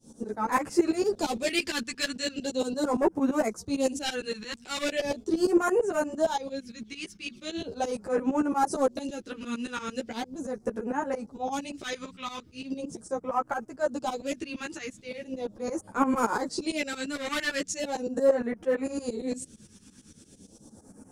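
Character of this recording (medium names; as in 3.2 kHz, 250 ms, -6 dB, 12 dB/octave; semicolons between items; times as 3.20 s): phasing stages 2, 0.39 Hz, lowest notch 640–3600 Hz; tremolo saw up 8.8 Hz, depth 95%; a shimmering, thickened sound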